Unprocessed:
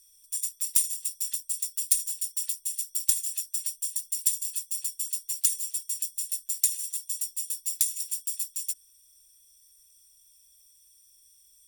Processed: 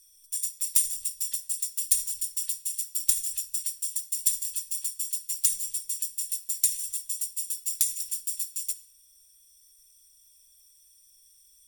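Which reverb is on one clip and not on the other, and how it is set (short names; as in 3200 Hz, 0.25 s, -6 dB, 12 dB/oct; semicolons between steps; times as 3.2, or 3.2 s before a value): shoebox room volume 2500 m³, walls furnished, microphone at 1.1 m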